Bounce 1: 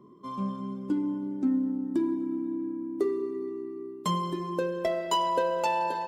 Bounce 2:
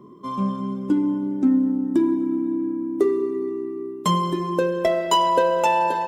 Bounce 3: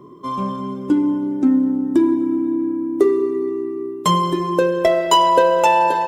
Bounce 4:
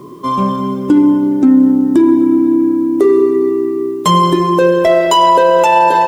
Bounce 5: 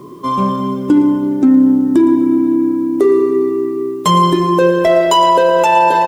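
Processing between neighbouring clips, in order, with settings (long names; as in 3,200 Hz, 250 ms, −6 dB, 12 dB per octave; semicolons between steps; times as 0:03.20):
notch filter 4,500 Hz, Q 8.2; level +8 dB
parametric band 210 Hz −11.5 dB 0.28 octaves; level +5 dB
bit reduction 10 bits; boost into a limiter +10 dB; level −1 dB
single-tap delay 114 ms −14.5 dB; level −1 dB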